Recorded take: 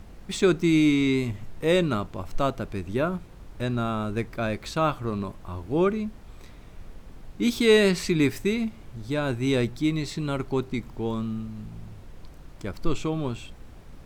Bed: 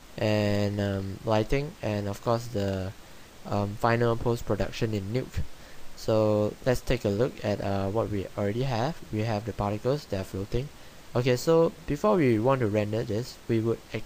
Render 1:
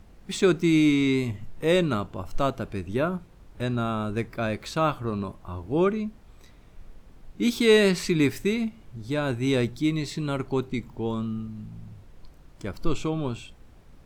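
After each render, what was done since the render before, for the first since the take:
noise reduction from a noise print 6 dB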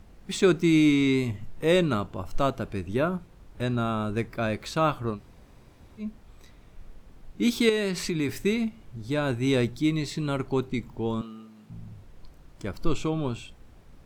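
0:05.15–0:06.02: fill with room tone, crossfade 0.10 s
0:07.69–0:08.29: downward compressor 2.5 to 1, threshold −26 dBFS
0:11.21–0:11.70: high-pass filter 410 Hz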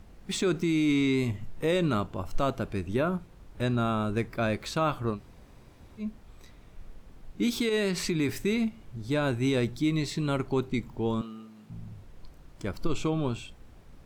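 brickwall limiter −17.5 dBFS, peak gain reduction 9 dB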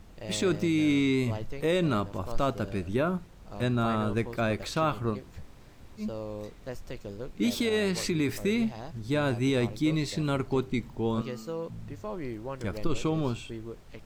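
mix in bed −14 dB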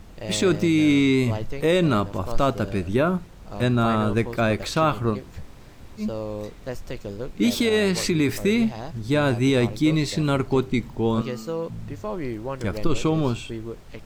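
level +6.5 dB

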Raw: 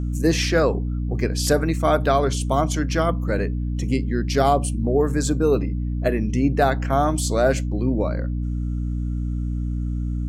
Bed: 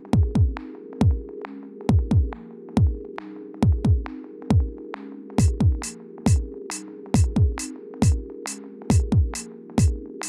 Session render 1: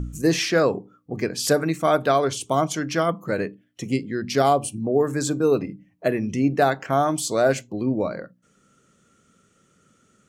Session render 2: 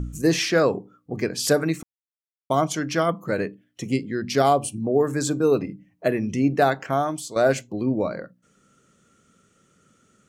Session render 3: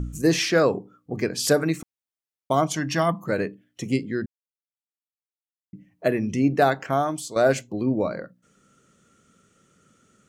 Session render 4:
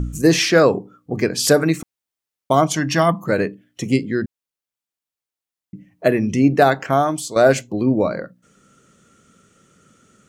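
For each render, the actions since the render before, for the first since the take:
hum removal 60 Hz, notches 5
0:01.83–0:02.50: silence; 0:06.80–0:07.36: fade out, to −12 dB
0:02.76–0:03.26: comb filter 1.1 ms, depth 57%; 0:04.26–0:05.73: silence
level +6 dB; brickwall limiter −2 dBFS, peak gain reduction 2 dB

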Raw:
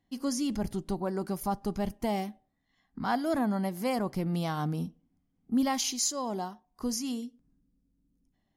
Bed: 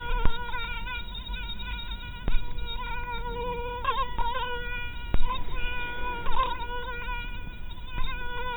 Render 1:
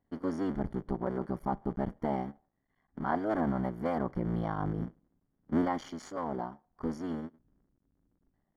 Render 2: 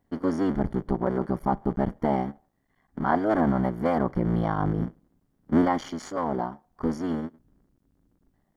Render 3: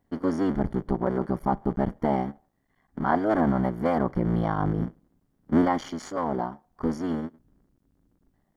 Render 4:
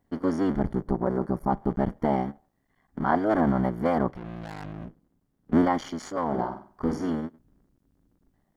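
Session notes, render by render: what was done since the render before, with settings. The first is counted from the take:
sub-harmonics by changed cycles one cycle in 3, muted; Savitzky-Golay smoothing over 41 samples
level +7.5 dB
no processing that can be heard
0:00.73–0:01.49: parametric band 2,900 Hz −6 dB → −13.5 dB 1.1 octaves; 0:04.10–0:05.53: tube saturation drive 35 dB, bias 0.6; 0:06.27–0:07.10: flutter between parallel walls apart 8.2 metres, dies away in 0.43 s

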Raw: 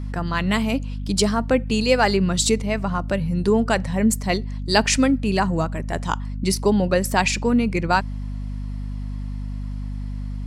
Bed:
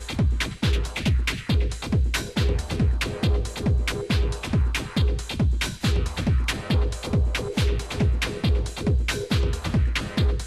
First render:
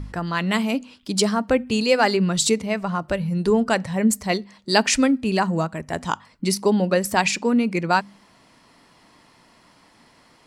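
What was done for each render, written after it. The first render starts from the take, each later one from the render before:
hum removal 50 Hz, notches 5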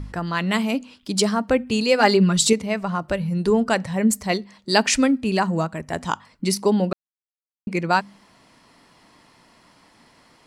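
0:02.00–0:02.53: comb filter 4.9 ms
0:06.93–0:07.67: silence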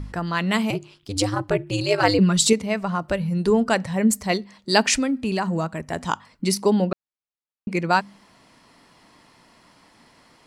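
0:00.70–0:02.19: ring modulation 99 Hz
0:04.95–0:06.02: downward compressor 3 to 1, threshold −20 dBFS
0:06.84–0:07.69: high-frequency loss of the air 110 metres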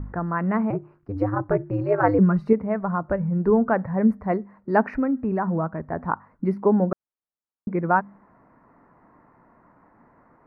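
inverse Chebyshev low-pass filter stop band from 3,100 Hz, stop band 40 dB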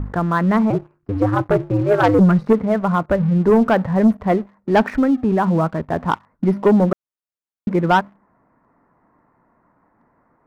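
leveller curve on the samples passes 2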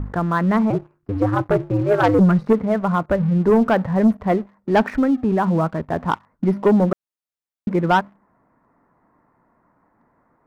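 level −1.5 dB

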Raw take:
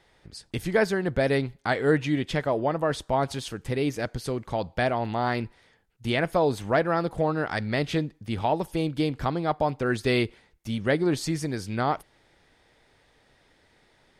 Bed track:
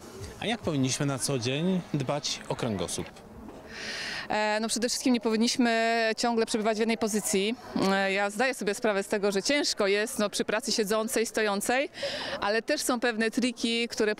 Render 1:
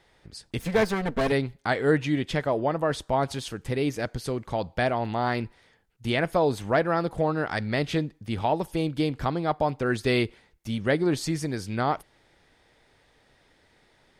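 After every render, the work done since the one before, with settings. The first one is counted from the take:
0:00.59–0:01.32: lower of the sound and its delayed copy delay 4.4 ms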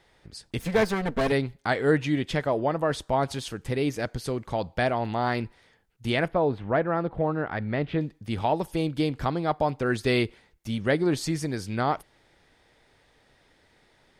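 0:06.28–0:08.01: high-frequency loss of the air 420 metres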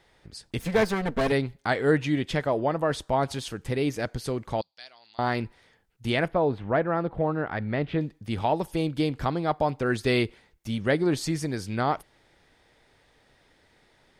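0:04.61–0:05.19: resonant band-pass 4,600 Hz, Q 4.5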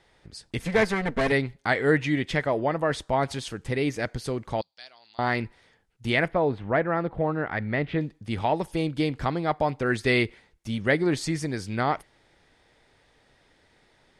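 low-pass filter 11,000 Hz 24 dB per octave
dynamic equaliser 2,000 Hz, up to +7 dB, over −47 dBFS, Q 2.9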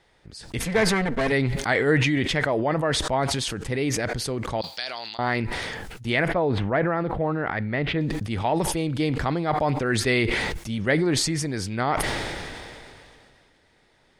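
level that may fall only so fast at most 24 dB per second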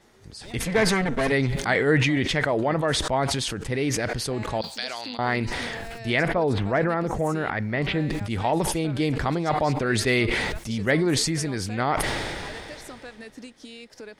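mix in bed track −15 dB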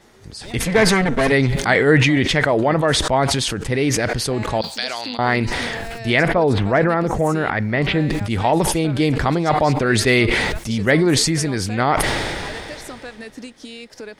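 level +6.5 dB
brickwall limiter −3 dBFS, peak gain reduction 1 dB

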